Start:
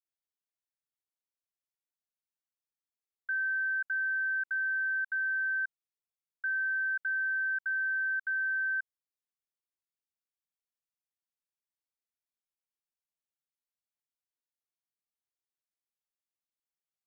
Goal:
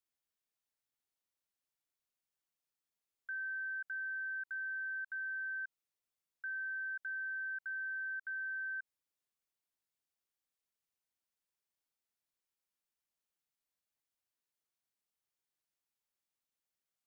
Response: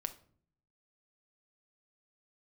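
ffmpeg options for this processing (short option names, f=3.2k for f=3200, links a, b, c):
-af "alimiter=level_in=15dB:limit=-24dB:level=0:latency=1:release=74,volume=-15dB,volume=2dB"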